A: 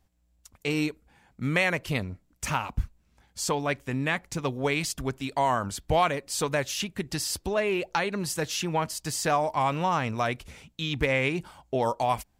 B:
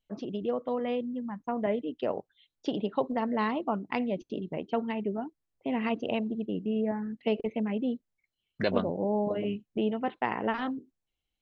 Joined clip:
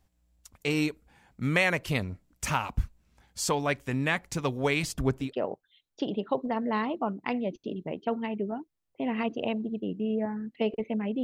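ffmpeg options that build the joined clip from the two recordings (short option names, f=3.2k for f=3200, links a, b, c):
-filter_complex "[0:a]asettb=1/sr,asplit=3[a][b][c];[a]atrim=end=4.834[d];[b]atrim=start=4.83:end=5.35,asetpts=PTS-STARTPTS,afade=t=in:d=0.004:c=qsin,afade=t=out:st=0.516:d=0.004:c=qsin,tiltshelf=f=1.2k:g=5[e];[c]atrim=start=5.346[f];[d][e]acrossfade=d=0.004:c1=hsin:c2=qsin[g];[g][f]acrossfade=d=0.004:c1=qsin:c2=hsin,apad=whole_dur=11.23,atrim=end=11.23,atrim=end=5.35,asetpts=PTS-STARTPTS[h];[1:a]atrim=start=1.85:end=7.89,asetpts=PTS-STARTPTS[i];[h][i]acrossfade=d=0.16:c1=tri:c2=tri"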